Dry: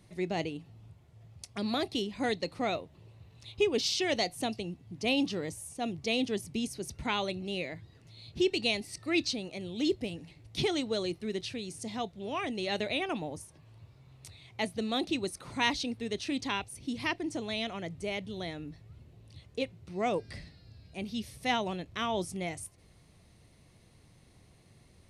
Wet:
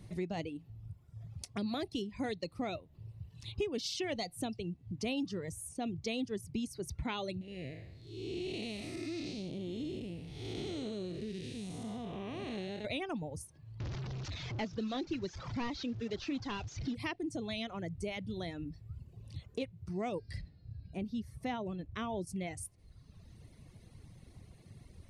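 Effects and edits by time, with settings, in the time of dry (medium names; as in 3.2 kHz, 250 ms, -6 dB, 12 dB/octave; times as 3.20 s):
7.41–12.85 s: spectral blur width 394 ms
13.80–16.95 s: one-bit delta coder 32 kbps, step -37 dBFS
20.41–22.27 s: treble shelf 2.2 kHz -10 dB
whole clip: reverb removal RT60 1.2 s; bass shelf 280 Hz +9.5 dB; compression 2.5:1, threshold -39 dBFS; trim +1 dB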